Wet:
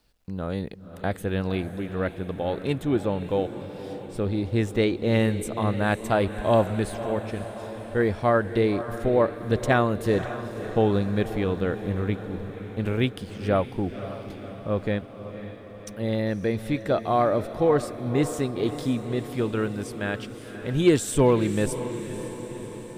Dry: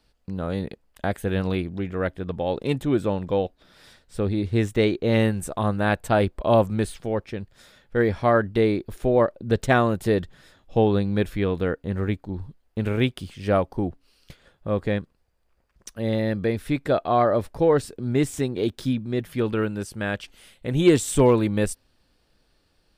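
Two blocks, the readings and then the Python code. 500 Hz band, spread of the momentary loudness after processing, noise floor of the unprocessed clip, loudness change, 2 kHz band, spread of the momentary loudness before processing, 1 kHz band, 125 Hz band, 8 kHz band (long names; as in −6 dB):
−1.5 dB, 13 LU, −67 dBFS, −2.0 dB, −1.5 dB, 11 LU, −1.5 dB, −1.5 dB, −1.5 dB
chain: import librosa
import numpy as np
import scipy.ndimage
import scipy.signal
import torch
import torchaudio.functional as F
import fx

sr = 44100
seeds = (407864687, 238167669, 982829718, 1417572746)

y = fx.quant_dither(x, sr, seeds[0], bits=12, dither='none')
y = fx.echo_diffused(y, sr, ms=537, feedback_pct=63, wet_db=-11.5)
y = y * librosa.db_to_amplitude(-2.0)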